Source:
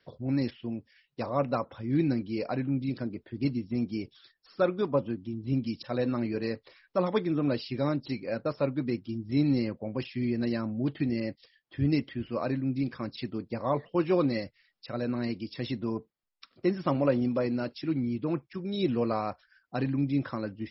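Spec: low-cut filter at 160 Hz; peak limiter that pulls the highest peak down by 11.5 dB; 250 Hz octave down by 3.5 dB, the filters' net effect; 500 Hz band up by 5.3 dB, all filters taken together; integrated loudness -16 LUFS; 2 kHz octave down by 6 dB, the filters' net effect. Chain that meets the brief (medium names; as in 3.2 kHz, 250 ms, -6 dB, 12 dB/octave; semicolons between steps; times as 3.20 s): high-pass 160 Hz; peaking EQ 250 Hz -6.5 dB; peaking EQ 500 Hz +8.5 dB; peaking EQ 2 kHz -8.5 dB; trim +17 dB; peak limiter -3.5 dBFS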